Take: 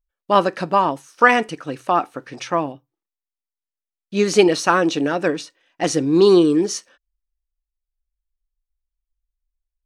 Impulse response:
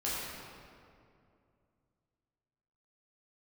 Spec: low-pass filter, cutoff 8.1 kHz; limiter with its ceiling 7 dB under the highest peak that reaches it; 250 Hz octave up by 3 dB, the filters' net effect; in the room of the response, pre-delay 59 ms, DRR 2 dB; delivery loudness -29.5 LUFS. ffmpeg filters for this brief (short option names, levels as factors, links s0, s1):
-filter_complex "[0:a]lowpass=8100,equalizer=f=250:t=o:g=4.5,alimiter=limit=0.422:level=0:latency=1,asplit=2[s0][s1];[1:a]atrim=start_sample=2205,adelay=59[s2];[s1][s2]afir=irnorm=-1:irlink=0,volume=0.398[s3];[s0][s3]amix=inputs=2:normalize=0,volume=0.251"